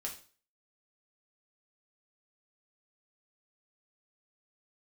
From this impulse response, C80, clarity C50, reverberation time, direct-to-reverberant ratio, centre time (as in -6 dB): 14.5 dB, 9.5 dB, 0.40 s, -1.5 dB, 17 ms